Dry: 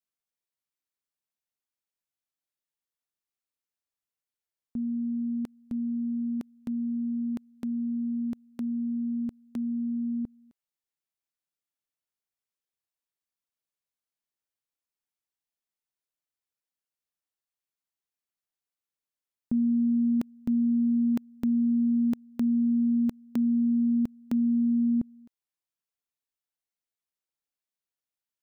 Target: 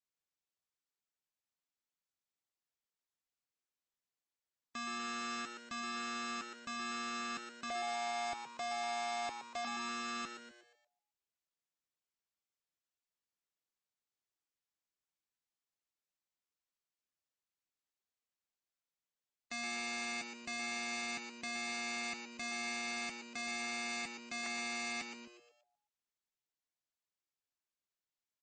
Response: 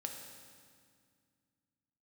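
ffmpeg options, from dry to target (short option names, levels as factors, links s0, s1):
-filter_complex "[0:a]asettb=1/sr,asplit=3[s0][s1][s2];[s0]atrim=end=7.704[s3];[s1]atrim=start=7.7:end=9.65,asetpts=PTS-STARTPTS,afade=t=in:d=0.004:c=qsin,afade=t=out:st=1.946:d=0.004:c=qsin,equalizer=f=380:t=o:w=0.92:g=-12.5[s4];[s2]atrim=start=9.646[s5];[s3][s4]acrossfade=d=0.004:c1=hsin:c2=qsin[s6];[s6][s5]acrossfade=d=0.004:c1=qsin:c2=hsin,asettb=1/sr,asplit=3[s7][s8][s9];[s7]atrim=end=24.464[s10];[s8]atrim=start=24.46:end=25.01,asetpts=PTS-STARTPTS,afade=t=in:d=0.004:c=qsin,afade=t=out:st=0.546:d=0.004:c=qsin,asuperstop=centerf=720:order=12:qfactor=3[s11];[s9]atrim=start=25.006[s12];[s10][s11]acrossfade=d=0.004:c1=hsin:c2=qsin[s13];[s13][s12]acrossfade=d=0.004:c1=qsin:c2=hsin,aeval=exprs='(mod(39.8*val(0)+1,2)-1)/39.8':c=same,asplit=6[s14][s15][s16][s17][s18][s19];[s15]adelay=119,afreqshift=120,volume=0.398[s20];[s16]adelay=238,afreqshift=240,volume=0.176[s21];[s17]adelay=357,afreqshift=360,volume=0.0767[s22];[s18]adelay=476,afreqshift=480,volume=0.0339[s23];[s19]adelay=595,afreqshift=600,volume=0.015[s24];[s14][s20][s21][s22][s23][s24]amix=inputs=6:normalize=0,volume=0.668" -ar 24000 -c:a libmp3lame -b:a 32k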